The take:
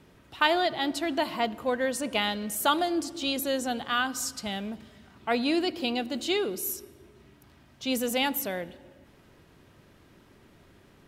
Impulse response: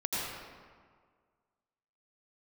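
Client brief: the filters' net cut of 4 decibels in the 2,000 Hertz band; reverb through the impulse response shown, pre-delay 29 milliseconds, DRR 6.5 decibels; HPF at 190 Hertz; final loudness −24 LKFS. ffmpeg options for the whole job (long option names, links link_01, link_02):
-filter_complex "[0:a]highpass=190,equalizer=frequency=2000:width_type=o:gain=-5.5,asplit=2[link_01][link_02];[1:a]atrim=start_sample=2205,adelay=29[link_03];[link_02][link_03]afir=irnorm=-1:irlink=0,volume=-13.5dB[link_04];[link_01][link_04]amix=inputs=2:normalize=0,volume=5dB"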